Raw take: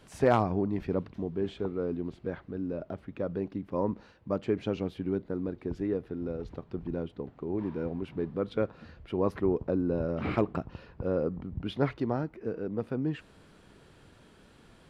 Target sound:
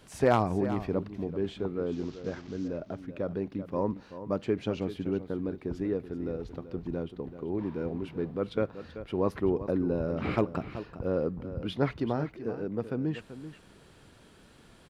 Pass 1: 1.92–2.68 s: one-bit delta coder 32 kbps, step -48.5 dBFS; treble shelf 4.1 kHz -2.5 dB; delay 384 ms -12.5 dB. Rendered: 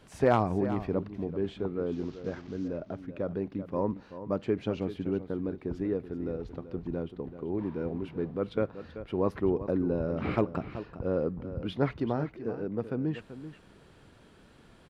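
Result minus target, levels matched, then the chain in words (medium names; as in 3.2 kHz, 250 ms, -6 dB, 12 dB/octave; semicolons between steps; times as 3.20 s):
8 kHz band -5.5 dB
1.92–2.68 s: one-bit delta coder 32 kbps, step -48.5 dBFS; treble shelf 4.1 kHz +5 dB; delay 384 ms -12.5 dB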